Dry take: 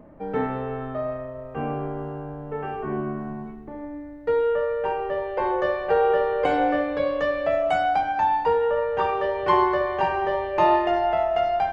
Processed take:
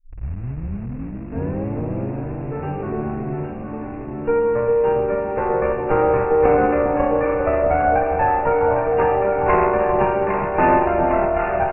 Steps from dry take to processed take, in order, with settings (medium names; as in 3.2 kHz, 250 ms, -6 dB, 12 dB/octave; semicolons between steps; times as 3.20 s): tape start-up on the opening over 2.35 s; Chebyshev shaper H 2 -8 dB, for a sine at -12.5 dBFS; bass shelf 370 Hz +7 dB; band-stop 1.9 kHz, Q 23; doubling 15 ms -13.5 dB; in parallel at -11 dB: bit crusher 5-bit; on the sum: brick-wall FIR low-pass 2.8 kHz; on a send: echo whose repeats swap between lows and highs 403 ms, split 900 Hz, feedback 82%, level -4 dB; on the sum: trim -3 dB